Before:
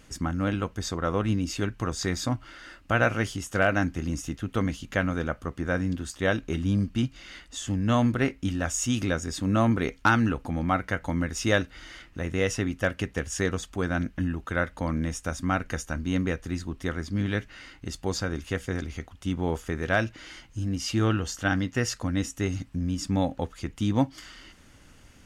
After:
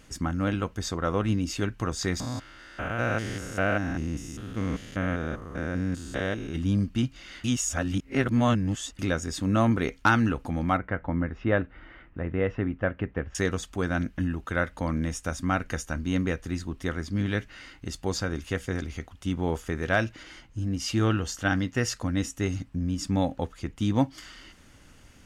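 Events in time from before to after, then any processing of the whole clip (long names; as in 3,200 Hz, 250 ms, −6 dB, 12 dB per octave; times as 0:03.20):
0:02.20–0:06.56: spectrum averaged block by block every 200 ms
0:07.44–0:08.99: reverse
0:10.77–0:13.35: Bessel low-pass filter 1,600 Hz, order 4
0:20.23–0:23.81: one half of a high-frequency compander decoder only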